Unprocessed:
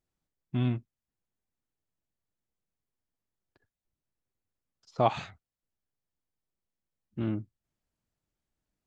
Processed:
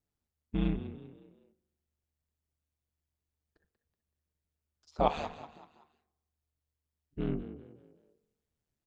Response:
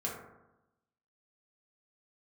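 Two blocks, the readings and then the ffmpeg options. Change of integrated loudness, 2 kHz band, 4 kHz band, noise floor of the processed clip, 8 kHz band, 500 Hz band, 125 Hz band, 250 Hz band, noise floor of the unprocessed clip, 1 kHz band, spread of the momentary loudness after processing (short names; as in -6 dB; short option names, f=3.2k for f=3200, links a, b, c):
-3.0 dB, -3.0 dB, -2.5 dB, under -85 dBFS, n/a, -2.0 dB, -5.5 dB, -1.5 dB, under -85 dBFS, -2.0 dB, 20 LU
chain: -filter_complex "[0:a]asplit=5[a][b][c][d][e];[b]adelay=189,afreqshift=45,volume=-13.5dB[f];[c]adelay=378,afreqshift=90,volume=-21.5dB[g];[d]adelay=567,afreqshift=135,volume=-29.4dB[h];[e]adelay=756,afreqshift=180,volume=-37.4dB[i];[a][f][g][h][i]amix=inputs=5:normalize=0,aeval=exprs='val(0)*sin(2*PI*76*n/s)':c=same,asplit=2[j][k];[1:a]atrim=start_sample=2205,lowpass=f=1.3k:w=0.5412,lowpass=f=1.3k:w=1.3066[l];[k][l]afir=irnorm=-1:irlink=0,volume=-15.5dB[m];[j][m]amix=inputs=2:normalize=0"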